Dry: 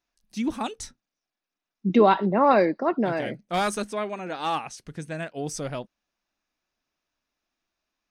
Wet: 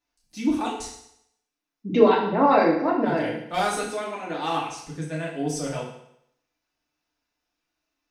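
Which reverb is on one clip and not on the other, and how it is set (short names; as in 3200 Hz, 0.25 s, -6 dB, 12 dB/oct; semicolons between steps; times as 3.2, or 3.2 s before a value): FDN reverb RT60 0.73 s, low-frequency decay 0.9×, high-frequency decay 1×, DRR -4.5 dB; gain -4 dB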